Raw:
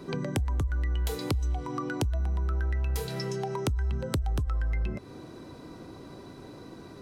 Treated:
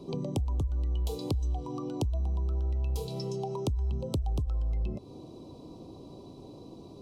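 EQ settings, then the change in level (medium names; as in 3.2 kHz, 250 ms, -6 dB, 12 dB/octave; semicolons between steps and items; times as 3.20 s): Butterworth band-stop 1.7 kHz, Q 0.81; treble shelf 6.5 kHz -8 dB; -1.5 dB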